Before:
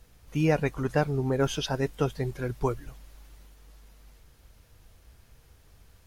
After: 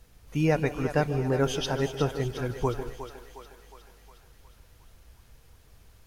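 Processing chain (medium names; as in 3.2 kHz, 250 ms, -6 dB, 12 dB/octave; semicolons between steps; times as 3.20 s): thinning echo 360 ms, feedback 61%, high-pass 410 Hz, level -9.5 dB; on a send at -13.5 dB: reverberation RT60 0.25 s, pre-delay 140 ms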